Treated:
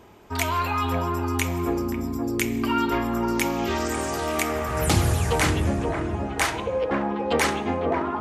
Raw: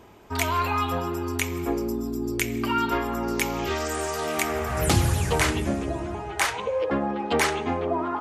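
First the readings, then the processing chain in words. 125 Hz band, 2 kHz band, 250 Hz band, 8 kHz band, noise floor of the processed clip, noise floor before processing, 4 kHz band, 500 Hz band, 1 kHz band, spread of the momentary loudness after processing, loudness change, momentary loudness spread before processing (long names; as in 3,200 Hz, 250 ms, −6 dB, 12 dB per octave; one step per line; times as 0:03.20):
+2.0 dB, +0.5 dB, +2.5 dB, 0.0 dB, −31 dBFS, −34 dBFS, 0.0 dB, +1.0 dB, +1.0 dB, 5 LU, +1.0 dB, 6 LU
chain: delay with a low-pass on its return 527 ms, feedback 32%, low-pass 1,400 Hz, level −5 dB
dense smooth reverb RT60 0.81 s, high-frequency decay 0.7×, DRR 15.5 dB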